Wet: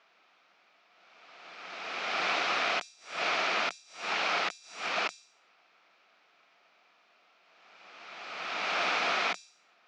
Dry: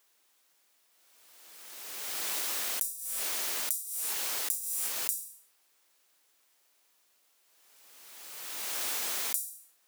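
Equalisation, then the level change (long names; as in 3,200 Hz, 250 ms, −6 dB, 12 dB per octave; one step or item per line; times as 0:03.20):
high-frequency loss of the air 170 metres
loudspeaker in its box 170–5,600 Hz, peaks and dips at 180 Hz +9 dB, 700 Hz +9 dB, 1,300 Hz +9 dB, 2,400 Hz +8 dB
+8.5 dB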